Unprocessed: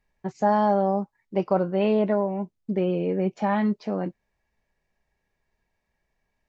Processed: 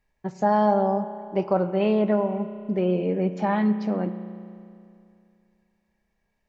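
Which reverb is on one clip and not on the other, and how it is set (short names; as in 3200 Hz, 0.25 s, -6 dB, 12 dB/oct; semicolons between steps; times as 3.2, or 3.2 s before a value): spring tank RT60 2.5 s, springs 33 ms, chirp 35 ms, DRR 11 dB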